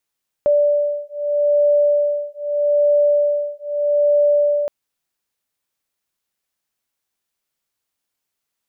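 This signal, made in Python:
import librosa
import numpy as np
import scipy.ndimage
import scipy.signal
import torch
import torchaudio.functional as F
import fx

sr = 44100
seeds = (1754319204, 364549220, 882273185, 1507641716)

y = fx.two_tone_beats(sr, length_s=4.22, hz=584.0, beat_hz=0.8, level_db=-17.0)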